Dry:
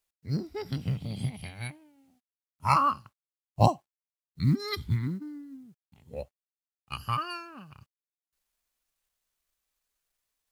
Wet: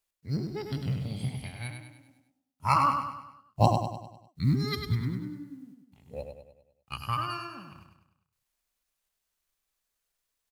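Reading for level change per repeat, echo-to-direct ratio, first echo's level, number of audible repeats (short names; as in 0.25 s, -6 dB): -6.5 dB, -5.0 dB, -6.0 dB, 5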